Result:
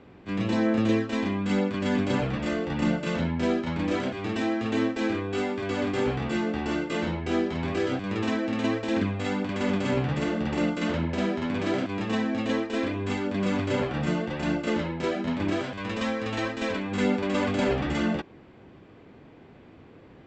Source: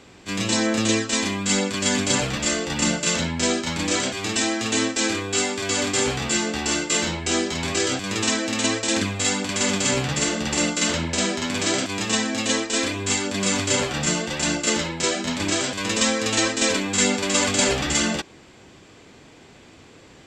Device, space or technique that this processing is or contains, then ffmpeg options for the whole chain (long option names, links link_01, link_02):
phone in a pocket: -filter_complex "[0:a]lowpass=3000,equalizer=frequency=190:width_type=o:width=2.8:gain=3,highshelf=frequency=2000:gain=-8.5,asettb=1/sr,asplit=3[link_01][link_02][link_03];[link_01]atrim=end=15.624[link_04];[link_02]atrim=start=15.62:end=16.92,asetpts=PTS-STARTPTS,afade=type=in:duration=0.004:curve=qsin,afade=type=out:start_time=1.296:duration=0.004:curve=qsin,equalizer=frequency=320:width_type=o:width=1.7:gain=-5.5[link_05];[link_03]atrim=start=16.916[link_06];[link_04][link_05]acrossfade=duration=0.004:curve1=hsin:curve2=qsin[link_07];[link_07][link_06]acrossfade=duration=0.004:curve1=qsin:curve2=hsin,volume=-3dB"